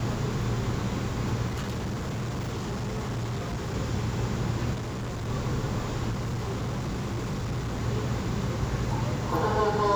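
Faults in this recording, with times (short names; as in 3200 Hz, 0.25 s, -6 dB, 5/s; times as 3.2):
1.47–3.74 clipped -28 dBFS
4.73–5.3 clipped -30 dBFS
6.1–7.81 clipped -27 dBFS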